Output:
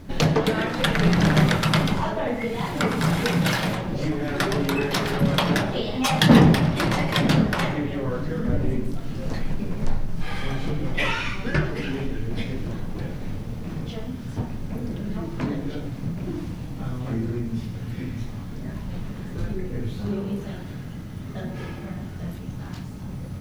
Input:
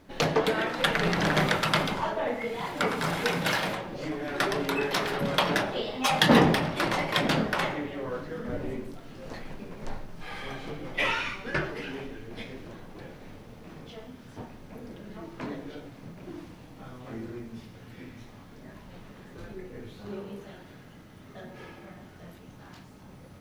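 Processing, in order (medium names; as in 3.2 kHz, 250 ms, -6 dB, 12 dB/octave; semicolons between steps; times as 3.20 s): in parallel at +3 dB: compression, threshold -37 dBFS, peak gain reduction 21.5 dB; on the sum: tone controls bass +12 dB, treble +3 dB; trim -1 dB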